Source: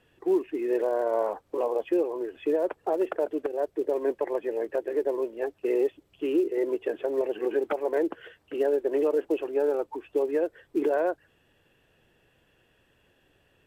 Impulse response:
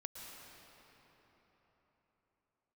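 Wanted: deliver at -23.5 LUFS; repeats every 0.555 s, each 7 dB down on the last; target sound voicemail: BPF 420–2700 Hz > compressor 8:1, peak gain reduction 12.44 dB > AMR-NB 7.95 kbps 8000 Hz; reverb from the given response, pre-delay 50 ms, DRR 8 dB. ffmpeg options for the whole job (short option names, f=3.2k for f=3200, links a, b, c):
-filter_complex "[0:a]aecho=1:1:555|1110|1665|2220|2775:0.447|0.201|0.0905|0.0407|0.0183,asplit=2[a][b];[1:a]atrim=start_sample=2205,adelay=50[c];[b][c]afir=irnorm=-1:irlink=0,volume=-5.5dB[d];[a][d]amix=inputs=2:normalize=0,highpass=420,lowpass=2.7k,acompressor=threshold=-33dB:ratio=8,volume=14.5dB" -ar 8000 -c:a libopencore_amrnb -b:a 7950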